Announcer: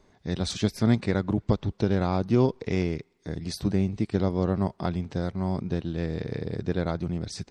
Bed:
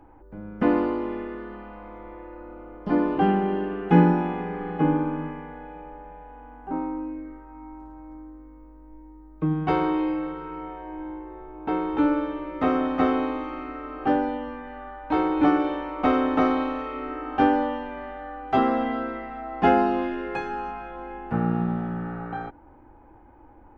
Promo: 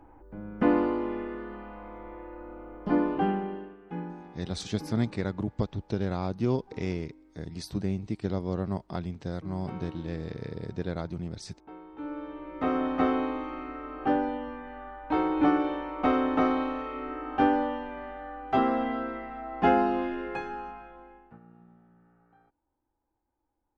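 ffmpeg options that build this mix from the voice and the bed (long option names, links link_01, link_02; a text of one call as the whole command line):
ffmpeg -i stem1.wav -i stem2.wav -filter_complex "[0:a]adelay=4100,volume=-5.5dB[link_01];[1:a]volume=15dB,afade=type=out:start_time=2.89:duration=0.88:silence=0.11885,afade=type=in:start_time=11.96:duration=0.91:silence=0.141254,afade=type=out:start_time=20.22:duration=1.17:silence=0.0446684[link_02];[link_01][link_02]amix=inputs=2:normalize=0" out.wav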